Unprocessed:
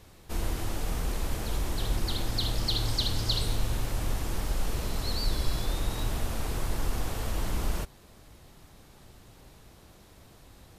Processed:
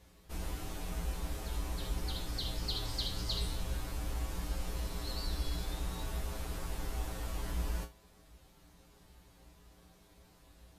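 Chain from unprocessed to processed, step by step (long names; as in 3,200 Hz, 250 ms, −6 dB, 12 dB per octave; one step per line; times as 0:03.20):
tuned comb filter 59 Hz, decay 0.24 s, harmonics odd, mix 90%
level +1 dB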